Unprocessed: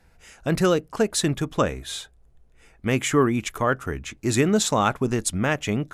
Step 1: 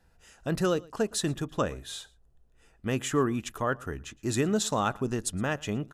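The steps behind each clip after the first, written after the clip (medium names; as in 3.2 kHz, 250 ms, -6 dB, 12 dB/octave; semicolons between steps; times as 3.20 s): band-stop 2.2 kHz, Q 5.3; delay 115 ms -24 dB; trim -6.5 dB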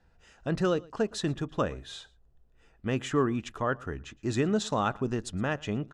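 distance through air 96 m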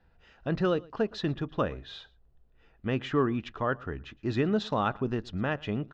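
low-pass 4.4 kHz 24 dB/octave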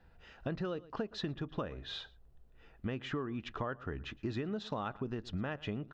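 compression 10:1, threshold -36 dBFS, peak gain reduction 16 dB; trim +2 dB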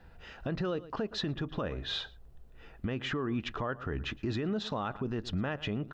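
peak limiter -32 dBFS, peak gain reduction 7.5 dB; trim +7.5 dB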